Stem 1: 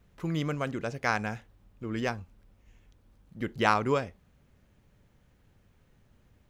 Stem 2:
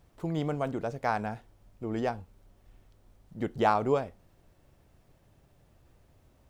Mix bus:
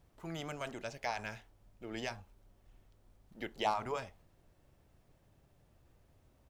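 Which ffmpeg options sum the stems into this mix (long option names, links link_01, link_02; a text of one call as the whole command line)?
ffmpeg -i stem1.wav -i stem2.wav -filter_complex "[0:a]alimiter=limit=-19.5dB:level=0:latency=1:release=25,volume=-3.5dB[link_01];[1:a]volume=-1,adelay=0.3,volume=-5dB,asplit=2[link_02][link_03];[link_03]apad=whole_len=286598[link_04];[link_01][link_04]sidechaingate=range=-33dB:threshold=-56dB:ratio=16:detection=peak[link_05];[link_05][link_02]amix=inputs=2:normalize=0" out.wav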